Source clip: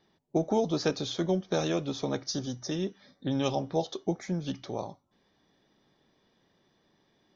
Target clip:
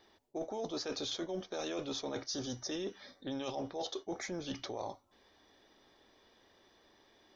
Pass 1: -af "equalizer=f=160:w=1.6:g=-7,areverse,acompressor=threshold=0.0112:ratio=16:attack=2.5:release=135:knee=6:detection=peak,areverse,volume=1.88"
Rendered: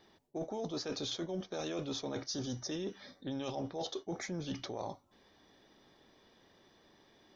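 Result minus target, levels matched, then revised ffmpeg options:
125 Hz band +5.5 dB
-af "equalizer=f=160:w=1.6:g=-17.5,areverse,acompressor=threshold=0.0112:ratio=16:attack=2.5:release=135:knee=6:detection=peak,areverse,volume=1.88"

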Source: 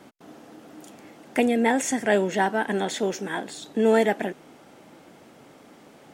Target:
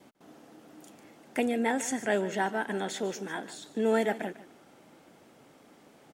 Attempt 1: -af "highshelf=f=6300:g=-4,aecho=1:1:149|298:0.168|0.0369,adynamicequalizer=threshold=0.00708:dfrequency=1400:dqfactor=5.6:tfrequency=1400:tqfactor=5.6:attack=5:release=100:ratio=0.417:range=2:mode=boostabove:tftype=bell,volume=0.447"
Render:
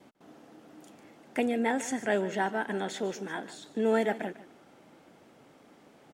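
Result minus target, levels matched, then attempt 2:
8 kHz band -3.5 dB
-af "highshelf=f=6300:g=2.5,aecho=1:1:149|298:0.168|0.0369,adynamicequalizer=threshold=0.00708:dfrequency=1400:dqfactor=5.6:tfrequency=1400:tqfactor=5.6:attack=5:release=100:ratio=0.417:range=2:mode=boostabove:tftype=bell,volume=0.447"

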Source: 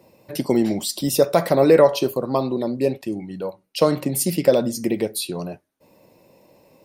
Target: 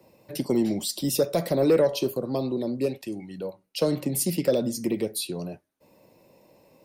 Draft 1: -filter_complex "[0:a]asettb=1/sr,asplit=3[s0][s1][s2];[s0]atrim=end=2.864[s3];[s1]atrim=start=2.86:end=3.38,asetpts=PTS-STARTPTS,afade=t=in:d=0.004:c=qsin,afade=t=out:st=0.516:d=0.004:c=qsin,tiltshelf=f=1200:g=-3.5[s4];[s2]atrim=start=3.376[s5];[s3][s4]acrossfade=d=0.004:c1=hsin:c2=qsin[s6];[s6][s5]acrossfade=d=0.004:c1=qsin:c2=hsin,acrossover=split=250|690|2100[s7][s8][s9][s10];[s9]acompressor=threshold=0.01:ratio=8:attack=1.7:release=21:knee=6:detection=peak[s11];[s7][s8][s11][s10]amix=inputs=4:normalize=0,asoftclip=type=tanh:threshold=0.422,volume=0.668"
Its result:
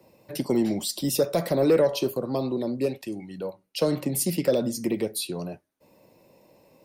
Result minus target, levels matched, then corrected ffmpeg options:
compression: peak gain reduction -9 dB
-filter_complex "[0:a]asettb=1/sr,asplit=3[s0][s1][s2];[s0]atrim=end=2.864[s3];[s1]atrim=start=2.86:end=3.38,asetpts=PTS-STARTPTS,afade=t=in:d=0.004:c=qsin,afade=t=out:st=0.516:d=0.004:c=qsin,tiltshelf=f=1200:g=-3.5[s4];[s2]atrim=start=3.376[s5];[s3][s4]acrossfade=d=0.004:c1=hsin:c2=qsin[s6];[s6][s5]acrossfade=d=0.004:c1=qsin:c2=hsin,acrossover=split=250|690|2100[s7][s8][s9][s10];[s9]acompressor=threshold=0.00316:ratio=8:attack=1.7:release=21:knee=6:detection=peak[s11];[s7][s8][s11][s10]amix=inputs=4:normalize=0,asoftclip=type=tanh:threshold=0.422,volume=0.668"

